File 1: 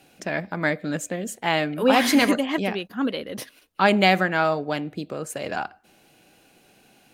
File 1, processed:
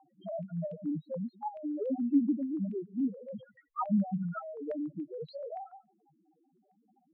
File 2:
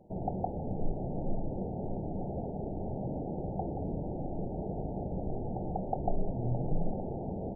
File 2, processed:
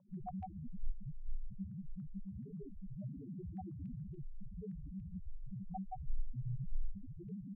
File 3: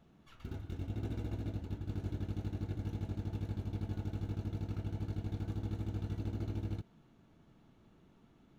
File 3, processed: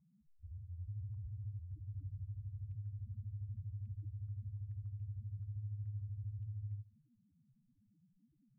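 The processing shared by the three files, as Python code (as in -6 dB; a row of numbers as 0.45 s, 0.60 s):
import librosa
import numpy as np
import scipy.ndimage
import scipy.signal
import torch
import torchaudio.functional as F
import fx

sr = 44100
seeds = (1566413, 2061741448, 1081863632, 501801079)

y = fx.freq_compress(x, sr, knee_hz=1100.0, ratio=1.5)
y = y + 10.0 ** (-21.0 / 20.0) * np.pad(y, (int(145 * sr / 1000.0), 0))[:len(y)]
y = fx.spec_topn(y, sr, count=1)
y = fx.low_shelf(y, sr, hz=440.0, db=2.0)
y = fx.env_lowpass_down(y, sr, base_hz=300.0, full_db=-28.5)
y = fx.dynamic_eq(y, sr, hz=900.0, q=1.6, threshold_db=-47.0, ratio=4.0, max_db=-6)
y = fx.filter_held_lowpass(y, sr, hz=7.0, low_hz=970.0, high_hz=2900.0)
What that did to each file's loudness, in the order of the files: -11.5 LU, -10.5 LU, -5.5 LU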